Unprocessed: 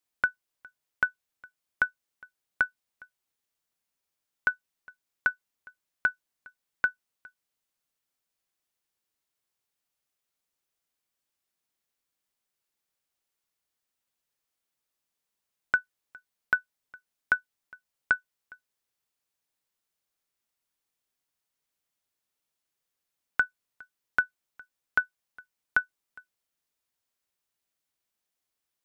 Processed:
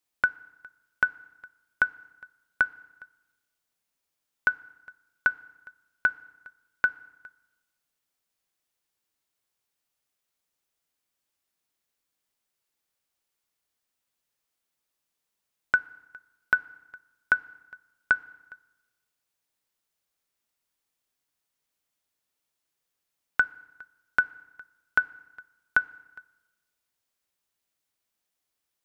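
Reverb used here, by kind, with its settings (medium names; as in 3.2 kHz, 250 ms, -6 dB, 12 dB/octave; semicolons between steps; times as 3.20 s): FDN reverb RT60 1.1 s, low-frequency decay 1.2×, high-frequency decay 0.85×, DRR 18.5 dB; trim +2 dB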